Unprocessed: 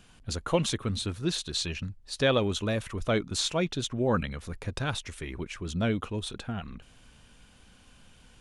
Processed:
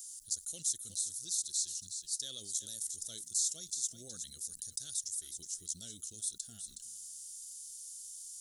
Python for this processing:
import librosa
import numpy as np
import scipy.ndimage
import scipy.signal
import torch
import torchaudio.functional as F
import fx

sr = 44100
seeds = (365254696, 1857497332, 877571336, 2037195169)

p1 = scipy.signal.sosfilt(scipy.signal.cheby2(4, 50, 2600.0, 'highpass', fs=sr, output='sos'), x)
p2 = p1 + fx.echo_single(p1, sr, ms=368, db=-16.0, dry=0)
p3 = fx.env_flatten(p2, sr, amount_pct=50)
y = F.gain(torch.from_numpy(p3), 4.5).numpy()